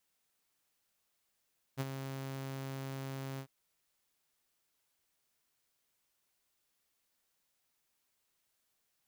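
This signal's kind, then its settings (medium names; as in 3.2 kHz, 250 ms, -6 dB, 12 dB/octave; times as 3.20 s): ADSR saw 135 Hz, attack 34 ms, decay 35 ms, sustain -8 dB, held 1.62 s, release 78 ms -29 dBFS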